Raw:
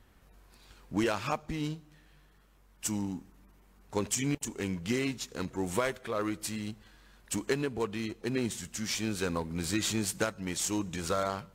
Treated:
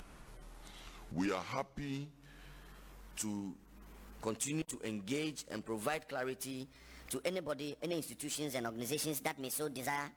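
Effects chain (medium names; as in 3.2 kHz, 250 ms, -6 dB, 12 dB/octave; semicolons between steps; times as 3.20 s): gliding tape speed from 78% -> 149%; peaking EQ 84 Hz -9 dB 0.58 oct; upward compressor, threshold -34 dBFS; trim -6.5 dB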